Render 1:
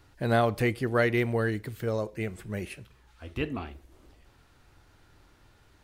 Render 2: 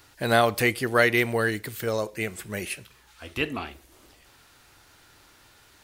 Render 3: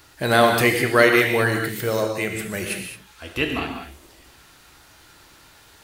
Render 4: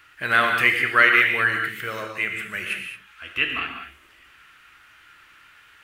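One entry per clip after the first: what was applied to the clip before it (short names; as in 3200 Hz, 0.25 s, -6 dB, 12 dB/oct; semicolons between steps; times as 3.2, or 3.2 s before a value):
tilt +2.5 dB/oct; gain +5.5 dB
non-linear reverb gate 0.24 s flat, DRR 2.5 dB; gain +3.5 dB
band shelf 1900 Hz +15.5 dB; gain -12 dB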